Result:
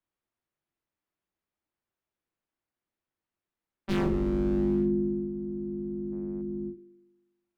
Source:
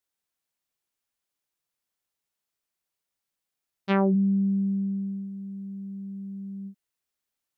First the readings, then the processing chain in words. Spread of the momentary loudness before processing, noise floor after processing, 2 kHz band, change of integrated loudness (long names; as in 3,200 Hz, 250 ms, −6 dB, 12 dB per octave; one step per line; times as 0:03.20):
16 LU, below −85 dBFS, −5.0 dB, −2.5 dB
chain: sub-octave generator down 2 octaves, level +2 dB
gain on a spectral selection 0:06.13–0:06.42, 650–3,000 Hz +12 dB
bass and treble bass −4 dB, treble −10 dB
in parallel at 0 dB: brickwall limiter −19 dBFS, peak gain reduction 9 dB
on the sum: high-shelf EQ 3,200 Hz −9.5 dB
wave folding −17 dBFS
frequency shifter −400 Hz
spring reverb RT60 1.2 s, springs 40 ms, DRR 15.5 dB
level −4 dB